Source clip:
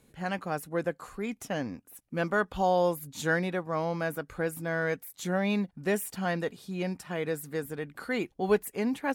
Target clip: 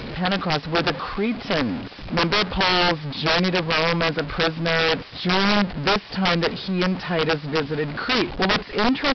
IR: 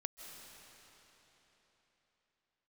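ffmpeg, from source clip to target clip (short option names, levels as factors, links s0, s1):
-af "aeval=exprs='val(0)+0.5*0.02*sgn(val(0))':c=same,acontrast=46,aresample=11025,aeval=exprs='(mod(6.31*val(0)+1,2)-1)/6.31':c=same,aresample=44100,volume=1.33"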